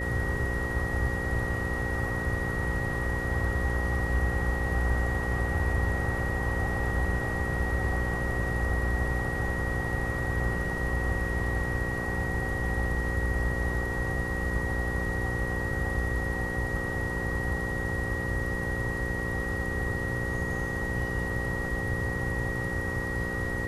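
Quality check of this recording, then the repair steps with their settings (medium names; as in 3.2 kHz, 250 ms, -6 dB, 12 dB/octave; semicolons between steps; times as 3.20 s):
buzz 60 Hz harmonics 9 -35 dBFS
whine 1.9 kHz -33 dBFS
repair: de-hum 60 Hz, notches 9; band-stop 1.9 kHz, Q 30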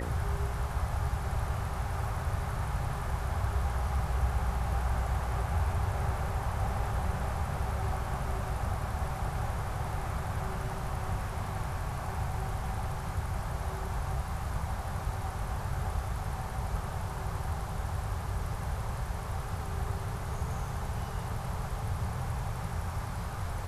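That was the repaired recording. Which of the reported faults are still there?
nothing left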